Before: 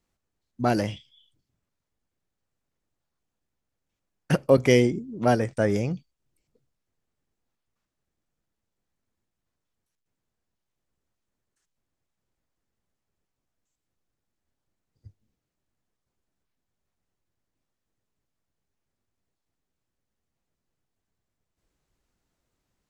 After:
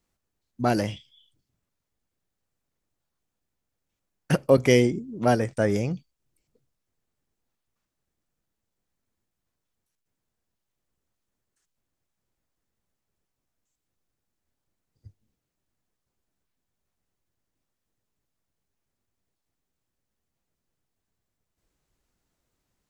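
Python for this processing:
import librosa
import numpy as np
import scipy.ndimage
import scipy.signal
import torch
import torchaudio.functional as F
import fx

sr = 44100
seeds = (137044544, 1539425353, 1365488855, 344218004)

y = fx.high_shelf(x, sr, hz=7600.0, db=4.0)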